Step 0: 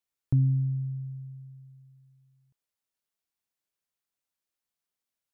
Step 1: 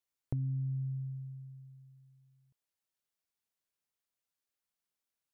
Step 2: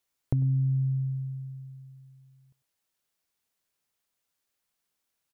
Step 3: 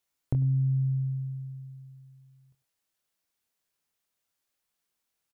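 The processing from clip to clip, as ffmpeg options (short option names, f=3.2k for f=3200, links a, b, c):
-af "acompressor=threshold=-30dB:ratio=6,volume=-2.5dB"
-af "aecho=1:1:98:0.106,volume=8.5dB"
-filter_complex "[0:a]asplit=2[a][b];[b]adelay=24,volume=-8.5dB[c];[a][c]amix=inputs=2:normalize=0,volume=-1.5dB"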